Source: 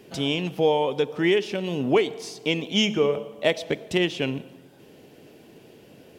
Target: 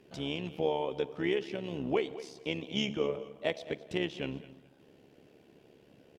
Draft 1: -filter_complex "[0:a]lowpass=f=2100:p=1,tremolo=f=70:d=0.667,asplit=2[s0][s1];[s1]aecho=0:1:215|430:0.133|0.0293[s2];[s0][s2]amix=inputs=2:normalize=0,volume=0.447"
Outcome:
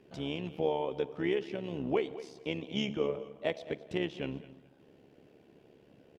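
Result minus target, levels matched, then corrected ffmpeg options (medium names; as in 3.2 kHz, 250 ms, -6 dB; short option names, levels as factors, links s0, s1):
4 kHz band -3.0 dB
-filter_complex "[0:a]lowpass=f=4400:p=1,tremolo=f=70:d=0.667,asplit=2[s0][s1];[s1]aecho=0:1:215|430:0.133|0.0293[s2];[s0][s2]amix=inputs=2:normalize=0,volume=0.447"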